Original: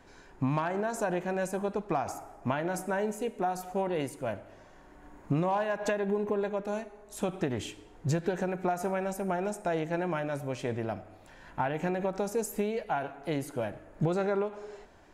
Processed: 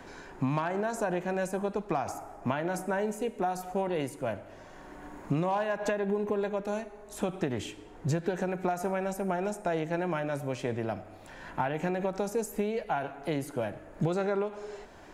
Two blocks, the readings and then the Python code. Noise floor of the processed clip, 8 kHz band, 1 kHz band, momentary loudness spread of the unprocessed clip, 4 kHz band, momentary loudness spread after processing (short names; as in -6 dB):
-49 dBFS, -1.0 dB, 0.0 dB, 8 LU, +0.5 dB, 11 LU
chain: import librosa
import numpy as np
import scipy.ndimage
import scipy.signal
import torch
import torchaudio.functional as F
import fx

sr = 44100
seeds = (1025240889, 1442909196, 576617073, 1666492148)

y = fx.band_squash(x, sr, depth_pct=40)